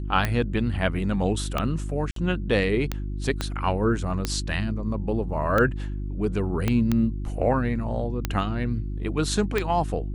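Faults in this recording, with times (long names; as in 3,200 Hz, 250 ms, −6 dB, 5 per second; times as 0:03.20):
mains hum 50 Hz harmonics 7 −30 dBFS
scratch tick 45 rpm −10 dBFS
0:02.11–0:02.16: drop-out 53 ms
0:03.41: click −12 dBFS
0:06.68: click −10 dBFS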